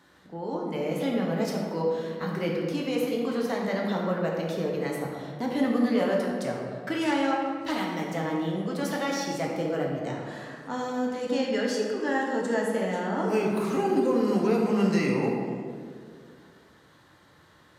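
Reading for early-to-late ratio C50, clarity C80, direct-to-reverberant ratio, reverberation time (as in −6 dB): 1.0 dB, 2.5 dB, −2.0 dB, 2.1 s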